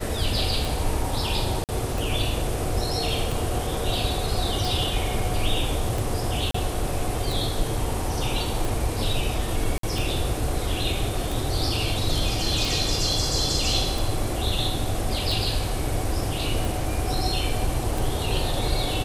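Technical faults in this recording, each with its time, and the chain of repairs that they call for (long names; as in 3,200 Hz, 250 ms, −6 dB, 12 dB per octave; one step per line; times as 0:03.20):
scratch tick 45 rpm
0:01.64–0:01.69: drop-out 48 ms
0:06.51–0:06.54: drop-out 34 ms
0:09.78–0:09.83: drop-out 53 ms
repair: click removal
repair the gap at 0:01.64, 48 ms
repair the gap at 0:06.51, 34 ms
repair the gap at 0:09.78, 53 ms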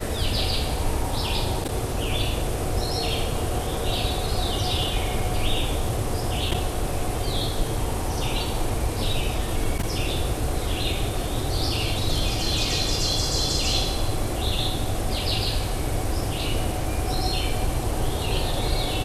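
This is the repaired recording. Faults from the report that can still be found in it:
none of them is left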